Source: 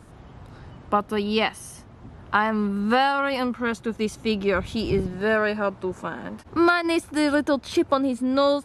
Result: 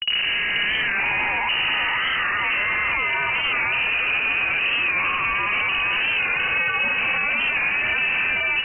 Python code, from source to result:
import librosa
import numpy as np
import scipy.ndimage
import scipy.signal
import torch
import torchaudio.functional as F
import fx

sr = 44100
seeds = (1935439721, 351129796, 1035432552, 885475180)

y = fx.spec_swells(x, sr, rise_s=2.91)
y = fx.highpass(y, sr, hz=340.0, slope=6)
y = fx.peak_eq(y, sr, hz=1900.0, db=8.0, octaves=0.36)
y = fx.notch(y, sr, hz=1500.0, q=6.9)
y = fx.spec_topn(y, sr, count=16)
y = fx.schmitt(y, sr, flips_db=-30.5)
y = fx.air_absorb(y, sr, metres=190.0)
y = y + 10.0 ** (-5.0 / 20.0) * np.pad(y, (int(483 * sr / 1000.0), 0))[:len(y)]
y = fx.freq_invert(y, sr, carrier_hz=2900)
y = fx.record_warp(y, sr, rpm=45.0, depth_cents=100.0)